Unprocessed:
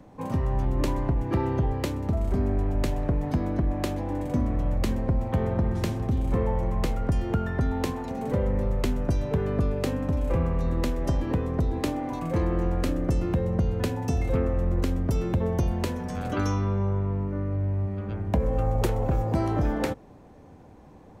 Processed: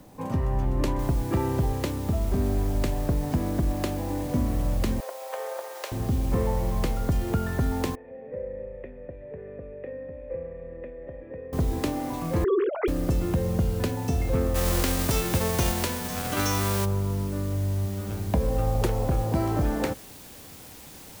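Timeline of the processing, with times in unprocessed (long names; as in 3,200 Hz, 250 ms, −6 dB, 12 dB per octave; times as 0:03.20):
0:00.99: noise floor change −62 dB −47 dB
0:05.00–0:05.92: elliptic high-pass filter 510 Hz, stop band 80 dB
0:07.95–0:11.53: formant resonators in series e
0:12.44–0:12.88: three sine waves on the formant tracks
0:14.54–0:16.84: spectral envelope flattened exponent 0.6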